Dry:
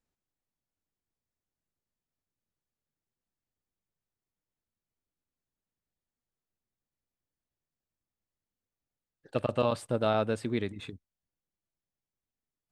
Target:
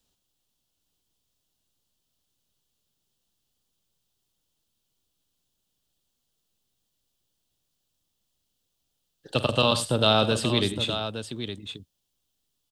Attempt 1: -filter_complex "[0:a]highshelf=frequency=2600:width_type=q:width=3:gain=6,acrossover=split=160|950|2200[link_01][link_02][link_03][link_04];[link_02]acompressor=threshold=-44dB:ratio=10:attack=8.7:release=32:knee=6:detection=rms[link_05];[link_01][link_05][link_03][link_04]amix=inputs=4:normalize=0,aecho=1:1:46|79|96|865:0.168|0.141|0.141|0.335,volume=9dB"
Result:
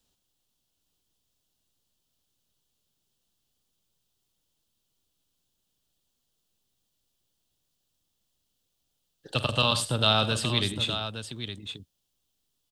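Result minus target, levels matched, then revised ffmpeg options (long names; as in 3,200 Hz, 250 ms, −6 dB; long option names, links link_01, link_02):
downward compressor: peak gain reduction +10 dB
-filter_complex "[0:a]highshelf=frequency=2600:width_type=q:width=3:gain=6,acrossover=split=160|950|2200[link_01][link_02][link_03][link_04];[link_02]acompressor=threshold=-33dB:ratio=10:attack=8.7:release=32:knee=6:detection=rms[link_05];[link_01][link_05][link_03][link_04]amix=inputs=4:normalize=0,aecho=1:1:46|79|96|865:0.168|0.141|0.141|0.335,volume=9dB"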